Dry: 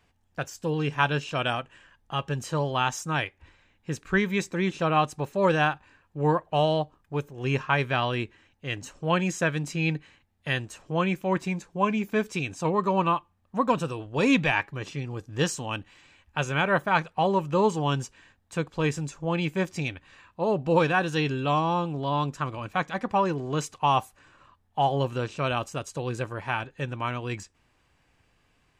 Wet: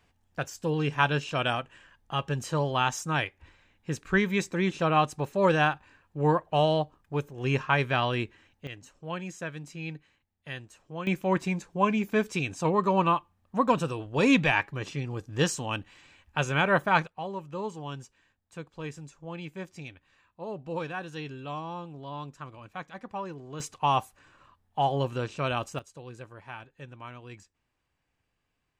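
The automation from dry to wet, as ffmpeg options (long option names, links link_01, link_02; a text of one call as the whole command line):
ffmpeg -i in.wav -af "asetnsamples=nb_out_samples=441:pad=0,asendcmd='8.67 volume volume -11dB;11.07 volume volume 0dB;17.07 volume volume -12dB;23.6 volume volume -2dB;25.79 volume volume -13dB',volume=-0.5dB" out.wav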